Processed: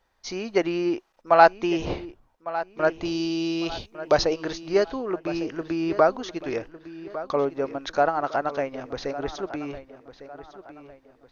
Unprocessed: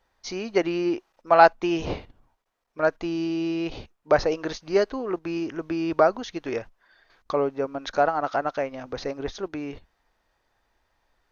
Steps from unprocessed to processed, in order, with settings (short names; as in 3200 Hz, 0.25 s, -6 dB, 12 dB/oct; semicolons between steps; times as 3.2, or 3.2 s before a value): 3.05–4.25 resonant high shelf 2700 Hz +7.5 dB, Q 1.5; darkening echo 1.154 s, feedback 39%, low-pass 4200 Hz, level -14 dB